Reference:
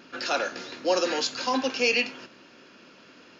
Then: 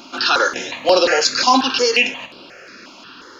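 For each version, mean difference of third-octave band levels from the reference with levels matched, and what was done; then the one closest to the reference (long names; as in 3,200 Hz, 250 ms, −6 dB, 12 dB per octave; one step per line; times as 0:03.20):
3.5 dB: parametric band 160 Hz −8 dB 2.7 octaves
boost into a limiter +17 dB
step-sequenced phaser 5.6 Hz 470–6,500 Hz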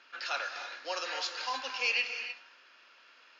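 7.0 dB: high-pass filter 1,100 Hz 12 dB per octave
high-frequency loss of the air 110 metres
reverb whose tail is shaped and stops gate 330 ms rising, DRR 7.5 dB
level −3 dB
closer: first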